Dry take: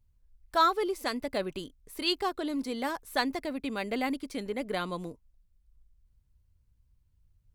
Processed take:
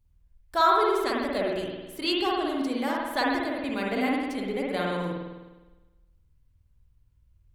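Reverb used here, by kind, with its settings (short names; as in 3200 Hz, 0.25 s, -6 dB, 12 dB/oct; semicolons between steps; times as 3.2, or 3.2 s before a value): spring tank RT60 1.2 s, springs 51 ms, chirp 80 ms, DRR -3 dB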